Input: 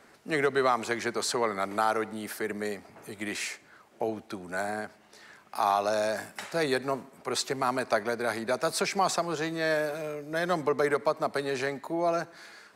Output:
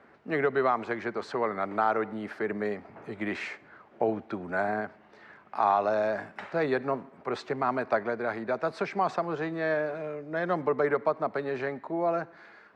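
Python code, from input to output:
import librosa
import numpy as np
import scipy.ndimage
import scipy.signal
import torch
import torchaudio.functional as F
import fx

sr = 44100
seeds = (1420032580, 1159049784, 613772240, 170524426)

y = scipy.signal.sosfilt(scipy.signal.butter(2, 45.0, 'highpass', fs=sr, output='sos'), x)
y = fx.rider(y, sr, range_db=10, speed_s=2.0)
y = scipy.signal.sosfilt(scipy.signal.butter(2, 2000.0, 'lowpass', fs=sr, output='sos'), y)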